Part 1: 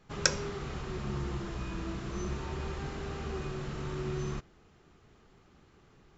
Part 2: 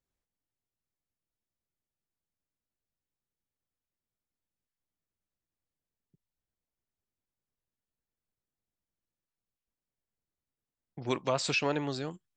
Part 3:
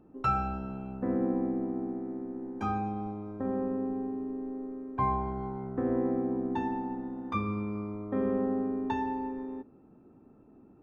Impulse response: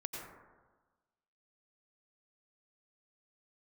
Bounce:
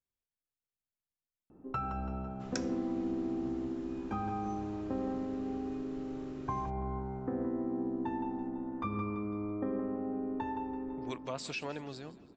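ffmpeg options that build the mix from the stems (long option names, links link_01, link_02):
-filter_complex "[0:a]adelay=2300,volume=-14dB[link_01];[1:a]volume=-9.5dB,asplit=2[link_02][link_03];[link_03]volume=-18.5dB[link_04];[2:a]acompressor=threshold=-31dB:ratio=10,highshelf=frequency=3200:gain=-10,adelay=1500,volume=-2dB,asplit=3[link_05][link_06][link_07];[link_06]volume=-10.5dB[link_08];[link_07]volume=-6.5dB[link_09];[3:a]atrim=start_sample=2205[link_10];[link_08][link_10]afir=irnorm=-1:irlink=0[link_11];[link_04][link_09]amix=inputs=2:normalize=0,aecho=0:1:167|334|501|668|835|1002|1169:1|0.48|0.23|0.111|0.0531|0.0255|0.0122[link_12];[link_01][link_02][link_05][link_11][link_12]amix=inputs=5:normalize=0"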